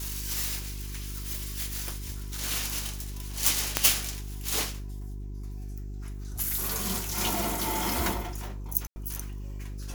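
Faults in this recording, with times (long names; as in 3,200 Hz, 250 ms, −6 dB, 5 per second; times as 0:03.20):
mains hum 50 Hz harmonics 8 −37 dBFS
0:03.77: click −2 dBFS
0:08.87–0:08.96: drop-out 90 ms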